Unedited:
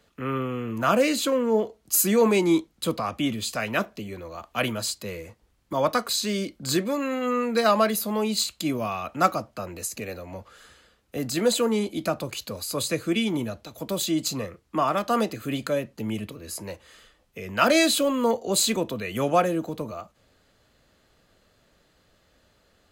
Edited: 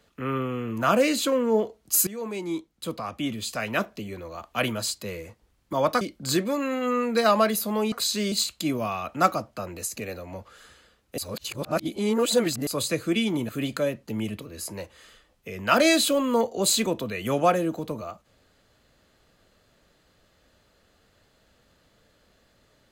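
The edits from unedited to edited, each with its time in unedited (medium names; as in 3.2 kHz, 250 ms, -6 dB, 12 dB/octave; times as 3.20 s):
2.07–3.93 s: fade in, from -18 dB
6.01–6.41 s: move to 8.32 s
11.18–12.67 s: reverse
13.49–15.39 s: delete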